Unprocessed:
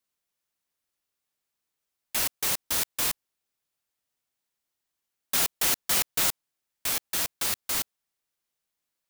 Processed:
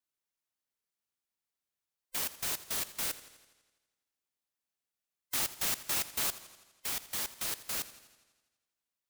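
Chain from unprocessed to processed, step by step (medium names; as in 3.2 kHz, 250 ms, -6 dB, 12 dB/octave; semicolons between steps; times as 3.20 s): every band turned upside down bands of 500 Hz; modulated delay 83 ms, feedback 63%, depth 79 cents, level -16 dB; trim -7.5 dB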